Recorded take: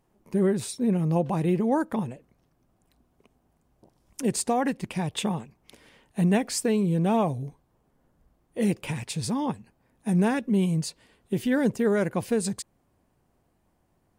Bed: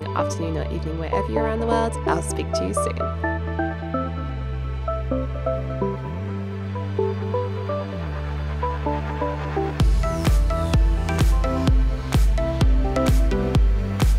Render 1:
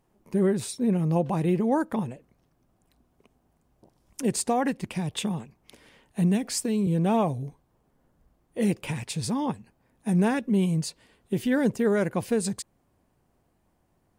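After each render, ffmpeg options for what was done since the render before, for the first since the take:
ffmpeg -i in.wav -filter_complex "[0:a]asettb=1/sr,asplit=3[link_01][link_02][link_03];[link_01]atrim=end=4.864[link_04];[link_02]atrim=start=4.86:end=6.87,asetpts=PTS-STARTPTS,afade=type=in:duration=0.004:curve=qsin,afade=type=out:start_time=2.006:duration=0.004:curve=qsin,acrossover=split=340|3000[link_05][link_06][link_07];[link_06]acompressor=threshold=-35dB:ratio=6:attack=3.2:release=140:knee=2.83:detection=peak[link_08];[link_05][link_08][link_07]amix=inputs=3:normalize=0[link_09];[link_03]atrim=start=6.866[link_10];[link_04][link_09]acrossfade=duration=0.004:curve1=hsin:curve2=qsin[link_11];[link_11][link_10]acrossfade=duration=0.004:curve1=qsin:curve2=hsin" out.wav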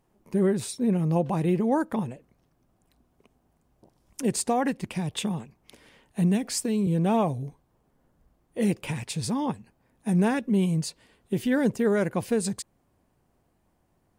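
ffmpeg -i in.wav -af anull out.wav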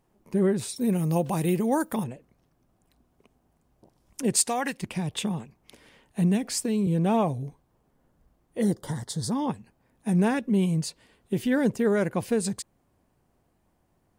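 ffmpeg -i in.wav -filter_complex "[0:a]asettb=1/sr,asplit=3[link_01][link_02][link_03];[link_01]atrim=end=0.764[link_04];[link_02]atrim=start=0.76:end=2.04,asetpts=PTS-STARTPTS,afade=type=in:duration=0.004:curve=qsin,afade=type=out:start_time=1.276:duration=0.004:curve=qsin,aemphasis=mode=production:type=75fm[link_05];[link_03]atrim=start=2.036[link_06];[link_04][link_05]acrossfade=duration=0.004:curve1=hsin:curve2=qsin[link_07];[link_07][link_06]acrossfade=duration=0.004:curve1=qsin:curve2=hsin,asplit=3[link_08][link_09][link_10];[link_08]afade=type=out:start_time=4.35:duration=0.02[link_11];[link_09]tiltshelf=frequency=1100:gain=-7.5,afade=type=in:start_time=4.35:duration=0.02,afade=type=out:start_time=4.8:duration=0.02[link_12];[link_10]afade=type=in:start_time=4.8:duration=0.02[link_13];[link_11][link_12][link_13]amix=inputs=3:normalize=0,asettb=1/sr,asplit=3[link_14][link_15][link_16];[link_14]atrim=end=8.624[link_17];[link_15]atrim=start=8.62:end=9.32,asetpts=PTS-STARTPTS,afade=type=in:duration=0.004:curve=qsin,afade=type=out:start_time=0.696:duration=0.004:curve=qsin,asuperstop=centerf=2500:order=4:qfactor=1.5[link_18];[link_16]atrim=start=9.316[link_19];[link_17][link_18]acrossfade=duration=0.004:curve1=hsin:curve2=qsin[link_20];[link_20][link_19]acrossfade=duration=0.004:curve1=qsin:curve2=hsin" out.wav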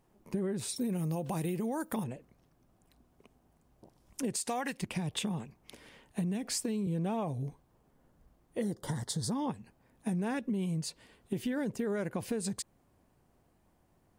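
ffmpeg -i in.wav -af "alimiter=limit=-18dB:level=0:latency=1:release=31,acompressor=threshold=-31dB:ratio=6" out.wav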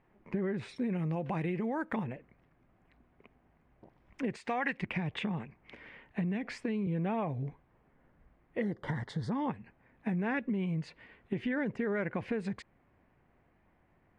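ffmpeg -i in.wav -af "lowpass=frequency=2100:width_type=q:width=2.6" out.wav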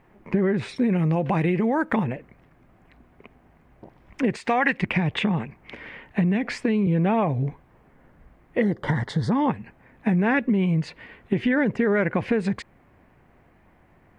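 ffmpeg -i in.wav -af "volume=11.5dB" out.wav

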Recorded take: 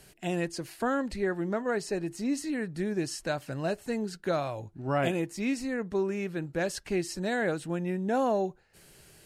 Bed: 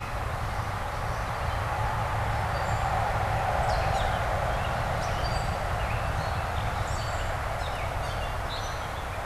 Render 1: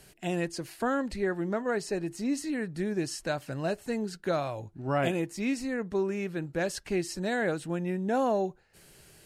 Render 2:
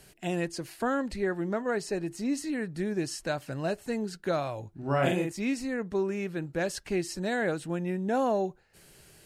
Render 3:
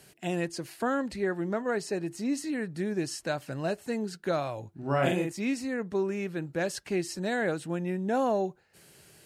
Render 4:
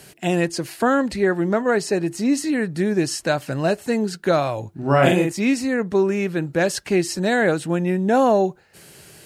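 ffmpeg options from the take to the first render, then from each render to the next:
ffmpeg -i in.wav -af anull out.wav
ffmpeg -i in.wav -filter_complex "[0:a]asettb=1/sr,asplit=3[link_01][link_02][link_03];[link_01]atrim=end=4.774[link_04];[link_02]atrim=start=4.77:end=5.32,asetpts=PTS-STARTPTS,afade=type=in:duration=0.004:curve=qsin,afade=type=out:start_time=0.546:duration=0.004:curve=qsin,asplit=2[link_05][link_06];[link_06]adelay=44,volume=-3dB[link_07];[link_05][link_07]amix=inputs=2:normalize=0,atrim=end_sample=24255[link_08];[link_03]atrim=start=5.316[link_09];[link_04][link_08]acrossfade=duration=0.004:curve1=hsin:curve2=qsin[link_10];[link_10][link_09]acrossfade=duration=0.004:curve1=qsin:curve2=hsin" out.wav
ffmpeg -i in.wav -af "highpass=87" out.wav
ffmpeg -i in.wav -af "volume=10.5dB" out.wav

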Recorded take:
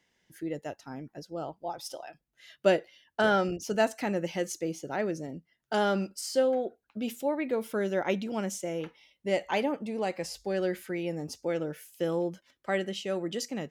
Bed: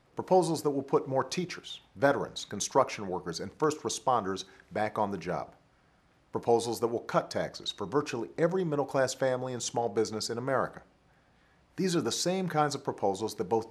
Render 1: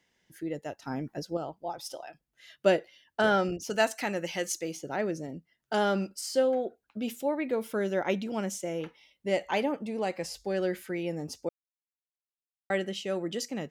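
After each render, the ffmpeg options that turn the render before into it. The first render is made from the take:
ffmpeg -i in.wav -filter_complex "[0:a]asettb=1/sr,asplit=3[link_01][link_02][link_03];[link_01]atrim=end=3.704[link_04];[link_02]atrim=start=3.7:end=4.77,asetpts=PTS-STARTPTS,afade=type=in:duration=0.004:curve=qsin,afade=type=out:start_time=1.066:duration=0.004:curve=qsin,tiltshelf=frequency=730:gain=-5[link_05];[link_03]atrim=start=4.766[link_06];[link_04][link_05]acrossfade=duration=0.004:curve1=hsin:curve2=qsin[link_07];[link_07][link_06]acrossfade=duration=0.004:curve1=qsin:curve2=hsin,asplit=5[link_08][link_09][link_10][link_11][link_12];[link_08]atrim=end=0.822[link_13];[link_09]atrim=start=0.818:end=1.372,asetpts=PTS-STARTPTS,volume=6.5dB[link_14];[link_10]atrim=start=1.368:end=11.49,asetpts=PTS-STARTPTS,afade=type=out:start_time=10.118:duration=0.004:curve=hsin[link_15];[link_11]atrim=start=11.49:end=12.7,asetpts=PTS-STARTPTS,volume=0[link_16];[link_12]atrim=start=12.7,asetpts=PTS-STARTPTS,afade=type=in:duration=0.004:curve=hsin[link_17];[link_13][link_14]acrossfade=duration=0.004:curve1=hsin:curve2=hsin[link_18];[link_15][link_16][link_17]concat=n=3:v=0:a=1[link_19];[link_18][link_19]acrossfade=duration=0.004:curve1=hsin:curve2=hsin" out.wav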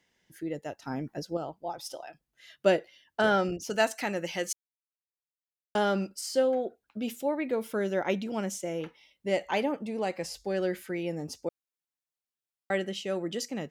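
ffmpeg -i in.wav -filter_complex "[0:a]asplit=3[link_01][link_02][link_03];[link_01]atrim=end=4.53,asetpts=PTS-STARTPTS,afade=type=out:start_time=4.526:duration=0.004:curve=hsin[link_04];[link_02]atrim=start=4.53:end=5.75,asetpts=PTS-STARTPTS,volume=0[link_05];[link_03]atrim=start=5.75,asetpts=PTS-STARTPTS,afade=type=in:duration=0.004:curve=hsin[link_06];[link_04][link_05][link_06]concat=n=3:v=0:a=1" out.wav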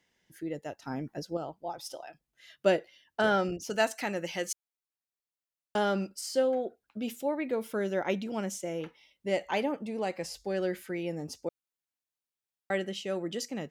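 ffmpeg -i in.wav -af "volume=-1.5dB" out.wav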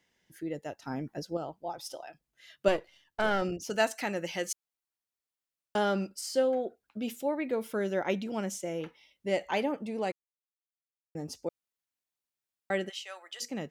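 ffmpeg -i in.wav -filter_complex "[0:a]asettb=1/sr,asplit=3[link_01][link_02][link_03];[link_01]atrim=end=2.684[link_04];[link_02]atrim=start=2.68:end=3.42,asetpts=PTS-STARTPTS,afade=type=in:duration=0.004:curve=qsin,afade=type=out:start_time=0.736:duration=0.004:curve=qsin,aeval=exprs='if(lt(val(0),0),0.447*val(0),val(0))':channel_layout=same[link_05];[link_03]atrim=start=3.416[link_06];[link_04][link_05]acrossfade=duration=0.004:curve1=hsin:curve2=qsin[link_07];[link_07][link_06]acrossfade=duration=0.004:curve1=qsin:curve2=hsin,asplit=3[link_08][link_09][link_10];[link_08]afade=type=out:start_time=12.88:duration=0.02[link_11];[link_09]highpass=frequency=850:width=0.5412,highpass=frequency=850:width=1.3066,afade=type=in:start_time=12.88:duration=0.02,afade=type=out:start_time=13.4:duration=0.02[link_12];[link_10]afade=type=in:start_time=13.4:duration=0.02[link_13];[link_11][link_12][link_13]amix=inputs=3:normalize=0,asplit=3[link_14][link_15][link_16];[link_14]atrim=end=10.12,asetpts=PTS-STARTPTS,afade=type=out:start_time=10.116:duration=0.004:curve=hsin[link_17];[link_15]atrim=start=10.12:end=11.15,asetpts=PTS-STARTPTS,volume=0[link_18];[link_16]atrim=start=11.15,asetpts=PTS-STARTPTS,afade=type=in:duration=0.004:curve=hsin[link_19];[link_17][link_18][link_19]concat=n=3:v=0:a=1" out.wav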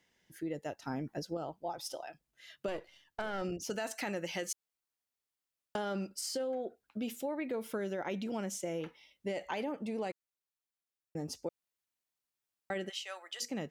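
ffmpeg -i in.wav -af "alimiter=limit=-24dB:level=0:latency=1:release=11,acompressor=threshold=-33dB:ratio=6" out.wav

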